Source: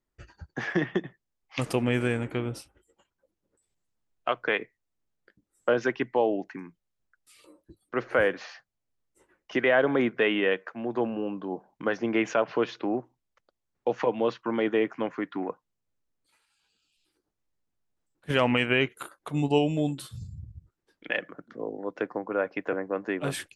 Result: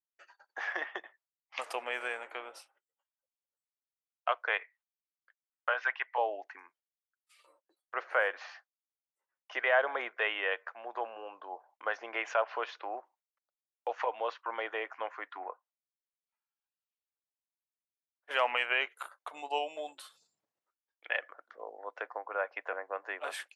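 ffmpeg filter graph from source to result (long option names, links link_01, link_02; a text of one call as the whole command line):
ffmpeg -i in.wav -filter_complex "[0:a]asettb=1/sr,asplit=3[link_01][link_02][link_03];[link_01]atrim=end=4.594[link_04];[link_02]atrim=start=4.59:end=6.18,asetpts=PTS-STARTPTS,afade=type=in:duration=0.004:curve=qsin,afade=type=out:start_time=1.586:duration=0.004:curve=qsin,highpass=540,lowpass=2600,tiltshelf=frequency=870:gain=-8[link_05];[link_03]atrim=start=6.176[link_06];[link_04][link_05]acrossfade=duration=0.004:curve1=hsin:curve2=qsin[link_07];[link_07][link_06]acrossfade=duration=0.004:curve1=qsin:curve2=hsin,asettb=1/sr,asplit=3[link_08][link_09][link_10];[link_08]atrim=end=15.384[link_11];[link_09]atrim=start=15.38:end=18.31,asetpts=PTS-STARTPTS,afade=type=in:duration=0.004:curve=qsin,afade=type=out:start_time=2.926:duration=0.004:curve=qsin,lowpass=frequency=1500:poles=1,asplit=2[link_12][link_13];[link_13]adelay=24,volume=-12dB[link_14];[link_12][link_14]amix=inputs=2:normalize=0,atrim=end_sample=129213[link_15];[link_10]atrim=start=18.306[link_16];[link_11][link_15]acrossfade=duration=0.004:curve1=hsin:curve2=qsin[link_17];[link_17][link_16]acrossfade=duration=0.004:curve1=qsin:curve2=hsin,agate=range=-20dB:threshold=-57dB:ratio=16:detection=peak,highpass=frequency=660:width=0.5412,highpass=frequency=660:width=1.3066,highshelf=frequency=3000:gain=-10" out.wav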